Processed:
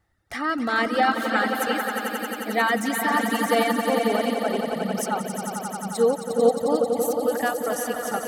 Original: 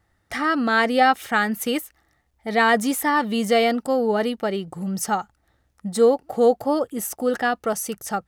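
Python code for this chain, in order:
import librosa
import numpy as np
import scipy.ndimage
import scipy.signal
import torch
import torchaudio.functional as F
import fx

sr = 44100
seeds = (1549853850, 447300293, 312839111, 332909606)

y = fx.echo_swell(x, sr, ms=89, loudest=5, wet_db=-6.0)
y = fx.dereverb_blind(y, sr, rt60_s=1.9)
y = y * librosa.db_to_amplitude(-3.5)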